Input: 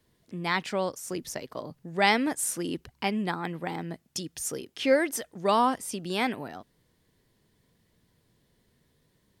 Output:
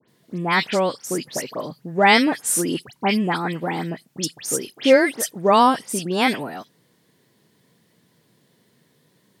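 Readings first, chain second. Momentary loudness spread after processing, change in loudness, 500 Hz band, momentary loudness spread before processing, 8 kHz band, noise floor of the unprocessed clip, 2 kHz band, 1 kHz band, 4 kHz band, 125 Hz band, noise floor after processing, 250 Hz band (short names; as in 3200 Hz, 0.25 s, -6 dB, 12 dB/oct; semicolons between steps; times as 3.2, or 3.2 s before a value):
14 LU, +8.5 dB, +8.5 dB, 13 LU, +8.5 dB, -70 dBFS, +8.5 dB, +8.5 dB, +8.5 dB, +8.0 dB, -63 dBFS, +8.5 dB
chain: HPF 130 Hz 24 dB/oct; dispersion highs, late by 85 ms, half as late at 2600 Hz; gain +8.5 dB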